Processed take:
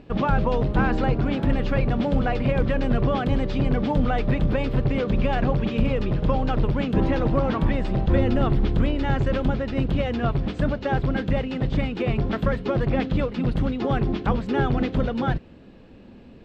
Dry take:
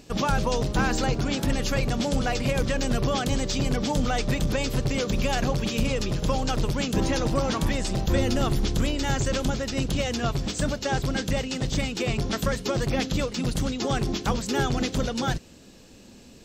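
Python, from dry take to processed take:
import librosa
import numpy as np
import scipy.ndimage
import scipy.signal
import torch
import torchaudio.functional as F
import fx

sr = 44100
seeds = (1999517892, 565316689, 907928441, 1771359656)

y = fx.air_absorb(x, sr, metres=480.0)
y = F.gain(torch.from_numpy(y), 4.0).numpy()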